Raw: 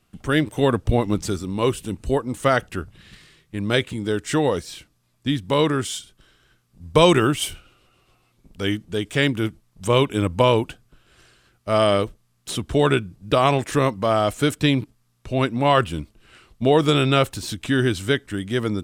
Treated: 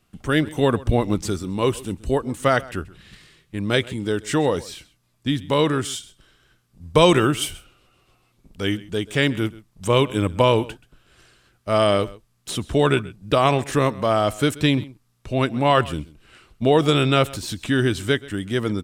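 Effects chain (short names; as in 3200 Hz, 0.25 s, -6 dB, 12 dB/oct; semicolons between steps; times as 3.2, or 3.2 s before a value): echo 0.131 s -20.5 dB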